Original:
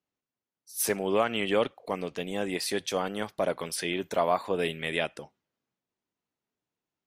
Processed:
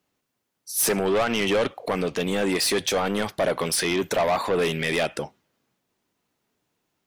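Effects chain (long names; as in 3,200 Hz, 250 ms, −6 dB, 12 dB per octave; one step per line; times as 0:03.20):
in parallel at +2 dB: brickwall limiter −24.5 dBFS, peak gain reduction 11.5 dB
on the sum: soft clipping −24 dBFS, distortion −8 dB
level +6.5 dB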